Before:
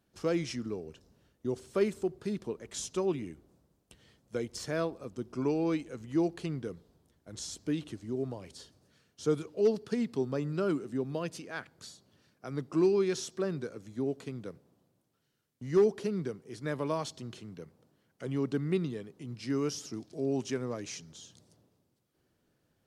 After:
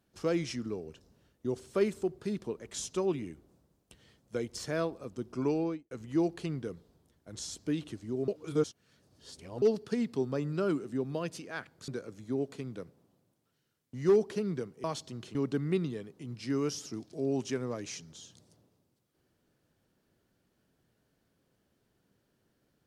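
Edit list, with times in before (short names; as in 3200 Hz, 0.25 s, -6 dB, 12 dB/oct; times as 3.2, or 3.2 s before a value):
5.54–5.91 studio fade out
8.28–9.62 reverse
11.88–13.56 cut
16.52–16.94 cut
17.45–18.35 cut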